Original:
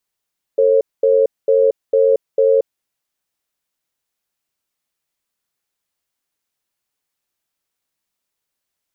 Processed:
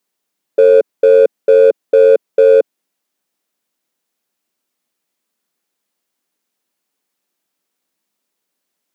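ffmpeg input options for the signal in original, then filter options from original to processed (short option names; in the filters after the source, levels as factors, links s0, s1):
-f lavfi -i "aevalsrc='0.237*(sin(2*PI*449*t)+sin(2*PI*541*t))*clip(min(mod(t,0.45),0.23-mod(t,0.45))/0.005,0,1)':d=2.17:s=44100"
-filter_complex "[0:a]highpass=f=200:w=0.5412,highpass=f=200:w=1.3066,lowshelf=f=380:g=10.5,asplit=2[s0][s1];[s1]asoftclip=type=hard:threshold=0.188,volume=0.531[s2];[s0][s2]amix=inputs=2:normalize=0"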